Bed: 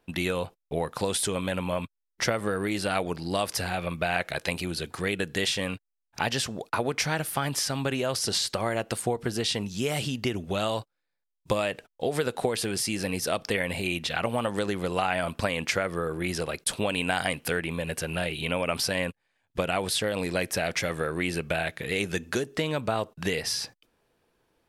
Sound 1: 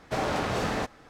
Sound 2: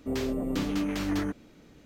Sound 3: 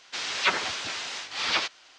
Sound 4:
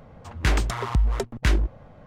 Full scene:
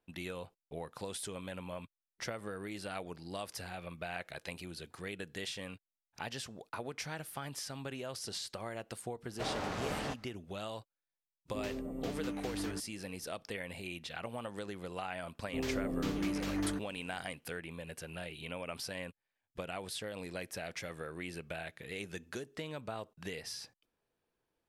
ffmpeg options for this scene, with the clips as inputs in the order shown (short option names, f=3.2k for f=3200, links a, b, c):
-filter_complex "[2:a]asplit=2[a][b];[0:a]volume=-14dB[c];[1:a]atrim=end=1.09,asetpts=PTS-STARTPTS,volume=-9.5dB,afade=t=in:d=0.1,afade=t=out:st=0.99:d=0.1,adelay=9280[d];[a]atrim=end=1.85,asetpts=PTS-STARTPTS,volume=-10.5dB,afade=t=in:d=0.004:c=hsin,afade=t=out:st=1.846:d=0.004:c=hsin,adelay=11480[e];[b]atrim=end=1.85,asetpts=PTS-STARTPTS,volume=-6dB,afade=t=in:d=0.004:c=hsin,afade=t=out:st=1.846:d=0.004:c=hsin,adelay=15470[f];[c][d][e][f]amix=inputs=4:normalize=0"